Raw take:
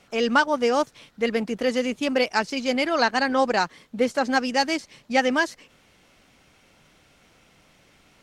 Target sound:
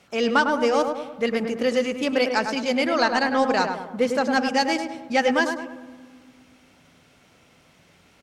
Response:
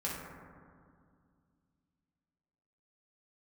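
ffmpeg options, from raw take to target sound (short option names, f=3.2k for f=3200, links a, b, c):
-filter_complex "[0:a]highpass=51,acontrast=29,asplit=2[a][b];[b]adelay=103,lowpass=f=1.5k:p=1,volume=-5dB,asplit=2[c][d];[d]adelay=103,lowpass=f=1.5k:p=1,volume=0.51,asplit=2[e][f];[f]adelay=103,lowpass=f=1.5k:p=1,volume=0.51,asplit=2[g][h];[h]adelay=103,lowpass=f=1.5k:p=1,volume=0.51,asplit=2[i][j];[j]adelay=103,lowpass=f=1.5k:p=1,volume=0.51,asplit=2[k][l];[l]adelay=103,lowpass=f=1.5k:p=1,volume=0.51[m];[a][c][e][g][i][k][m]amix=inputs=7:normalize=0,asplit=2[n][o];[1:a]atrim=start_sample=2205[p];[o][p]afir=irnorm=-1:irlink=0,volume=-21dB[q];[n][q]amix=inputs=2:normalize=0,volume=-5.5dB"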